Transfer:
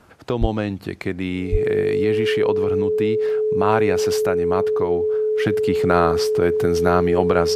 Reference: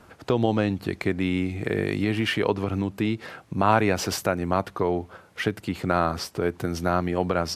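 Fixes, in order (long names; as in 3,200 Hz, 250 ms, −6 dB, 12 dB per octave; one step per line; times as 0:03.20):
notch filter 430 Hz, Q 30
high-pass at the plosives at 0:00.40/0:01.51
level correction −5 dB, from 0:05.46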